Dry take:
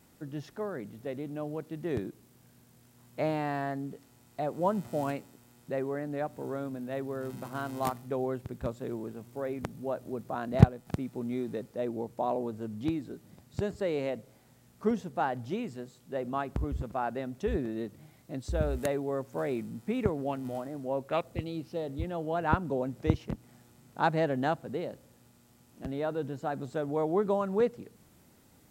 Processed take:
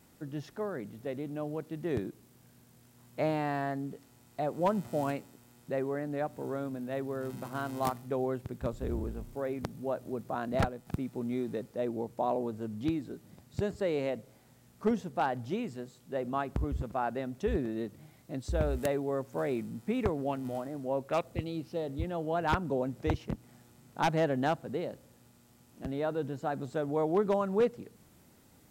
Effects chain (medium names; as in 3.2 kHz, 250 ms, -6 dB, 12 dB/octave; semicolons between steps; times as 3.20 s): 8.72–9.35 s: octave divider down 2 oct, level +4 dB; wavefolder -19 dBFS